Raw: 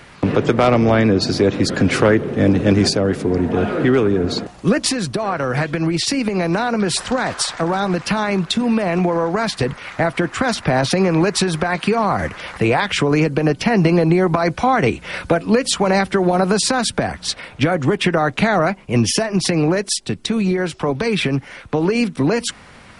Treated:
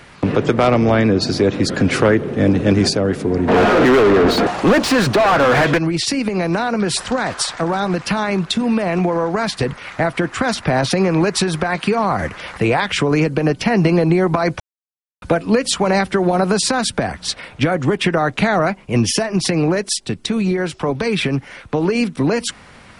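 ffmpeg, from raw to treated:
-filter_complex "[0:a]asplit=3[a][b][c];[a]afade=t=out:st=3.47:d=0.02[d];[b]asplit=2[e][f];[f]highpass=f=720:p=1,volume=32dB,asoftclip=type=tanh:threshold=-5dB[g];[e][g]amix=inputs=2:normalize=0,lowpass=f=1.5k:p=1,volume=-6dB,afade=t=in:st=3.47:d=0.02,afade=t=out:st=5.77:d=0.02[h];[c]afade=t=in:st=5.77:d=0.02[i];[d][h][i]amix=inputs=3:normalize=0,asplit=3[j][k][l];[j]atrim=end=14.6,asetpts=PTS-STARTPTS,afade=t=out:st=14.596:d=0.004:c=hsin[m];[k]atrim=start=14.6:end=15.22,asetpts=PTS-STARTPTS,volume=0[n];[l]atrim=start=15.22,asetpts=PTS-STARTPTS,afade=t=in:d=0.004:c=hsin[o];[m][n][o]concat=n=3:v=0:a=1"

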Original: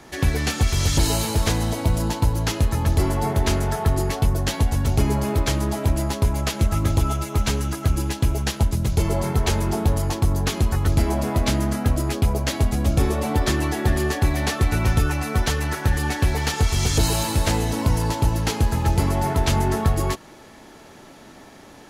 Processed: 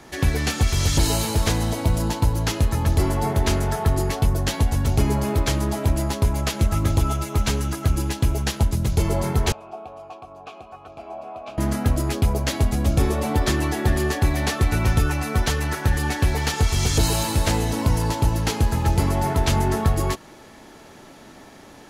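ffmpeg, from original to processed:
-filter_complex "[0:a]asettb=1/sr,asplit=3[a][b][c];[a]atrim=end=9.524[d];[b]atrim=start=9.52:end=11.58,asetpts=PTS-STARTPTS,afade=t=in:d=0.004:c=qsin,afade=t=out:st=2.056:d=0.004:c=qsin,asplit=3[e][f][g];[e]bandpass=f=730:t=q:w=8,volume=0dB[h];[f]bandpass=f=1.09k:t=q:w=8,volume=-6dB[i];[g]bandpass=f=2.44k:t=q:w=8,volume=-9dB[j];[h][i][j]amix=inputs=3:normalize=0[k];[c]atrim=start=11.576[l];[d][k]acrossfade=d=0.004:c1=hsin:c2=qsin[m];[m][l]acrossfade=d=0.004:c1=qsin:c2=hsin"

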